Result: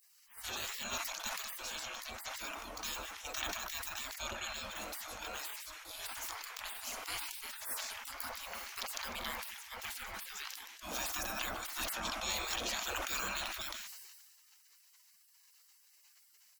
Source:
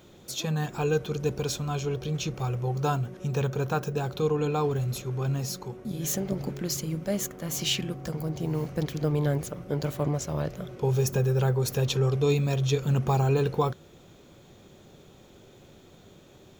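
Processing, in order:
single-tap delay 150 ms −18 dB
gate on every frequency bin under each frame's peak −30 dB weak
level that may fall only so fast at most 33 dB per second
level +6 dB

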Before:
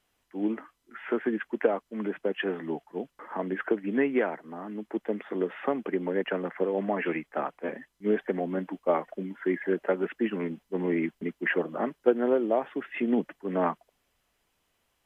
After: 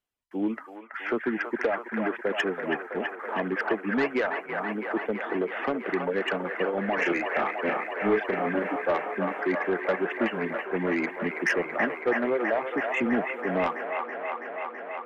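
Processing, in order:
reverb reduction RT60 1.3 s
noise gate with hold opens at −48 dBFS
dynamic equaliser 2,200 Hz, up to +5 dB, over −45 dBFS, Q 1.1
in parallel at 0 dB: downward compressor, threshold −34 dBFS, peak gain reduction 17.5 dB
on the sum: soft clipping −18.5 dBFS, distortion −13 dB
0:06.95–0:08.76: double-tracking delay 35 ms −3 dB
on a send: delay with a band-pass on its return 328 ms, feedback 82%, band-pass 1,200 Hz, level −3 dB

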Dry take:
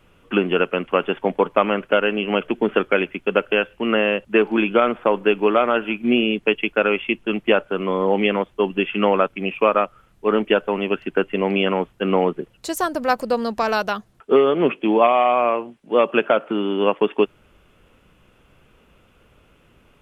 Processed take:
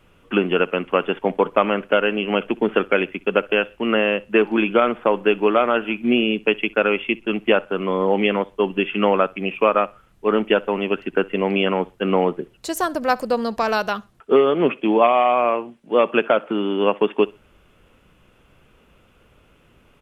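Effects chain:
repeating echo 64 ms, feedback 25%, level −24 dB

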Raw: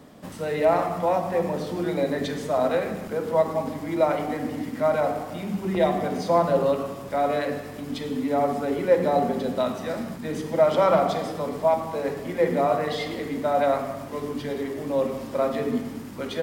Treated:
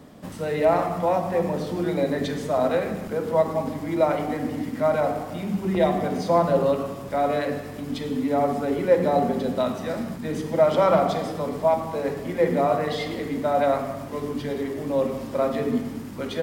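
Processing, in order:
low-shelf EQ 240 Hz +4 dB

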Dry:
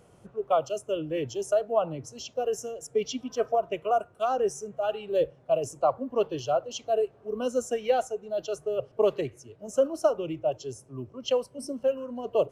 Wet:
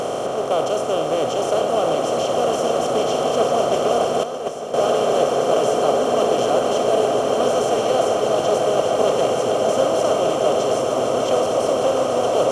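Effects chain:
compressor on every frequency bin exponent 0.2
echo that builds up and dies away 152 ms, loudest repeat 8, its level −11.5 dB
0:04.23–0:04.74: noise gate −12 dBFS, range −10 dB
level −3 dB

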